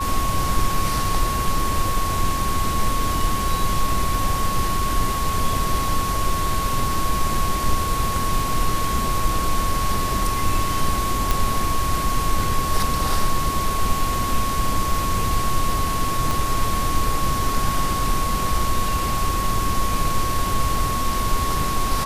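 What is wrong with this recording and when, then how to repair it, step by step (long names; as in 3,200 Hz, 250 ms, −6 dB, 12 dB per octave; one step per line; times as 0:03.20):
whistle 1,100 Hz −24 dBFS
0:11.31: click
0:16.31: click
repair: click removal
notch filter 1,100 Hz, Q 30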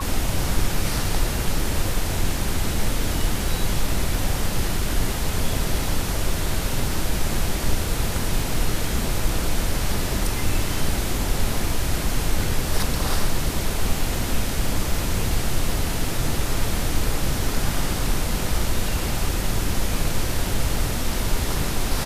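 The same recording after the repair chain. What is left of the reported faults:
0:16.31: click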